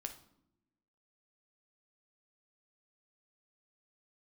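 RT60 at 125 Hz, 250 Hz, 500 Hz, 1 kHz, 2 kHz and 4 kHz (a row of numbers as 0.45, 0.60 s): 1.2, 1.3, 0.95, 0.70, 0.55, 0.50 s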